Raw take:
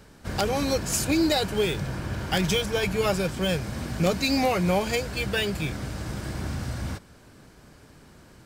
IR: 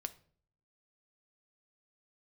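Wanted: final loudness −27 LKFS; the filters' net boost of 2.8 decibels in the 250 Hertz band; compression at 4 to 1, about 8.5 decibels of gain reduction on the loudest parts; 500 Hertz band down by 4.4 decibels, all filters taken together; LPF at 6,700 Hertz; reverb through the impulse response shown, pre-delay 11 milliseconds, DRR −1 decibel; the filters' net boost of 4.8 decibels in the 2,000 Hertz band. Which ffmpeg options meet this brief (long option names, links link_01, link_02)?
-filter_complex "[0:a]lowpass=6700,equalizer=frequency=250:width_type=o:gain=6,equalizer=frequency=500:width_type=o:gain=-7.5,equalizer=frequency=2000:width_type=o:gain=6.5,acompressor=threshold=-28dB:ratio=4,asplit=2[link_01][link_02];[1:a]atrim=start_sample=2205,adelay=11[link_03];[link_02][link_03]afir=irnorm=-1:irlink=0,volume=3dB[link_04];[link_01][link_04]amix=inputs=2:normalize=0,volume=0.5dB"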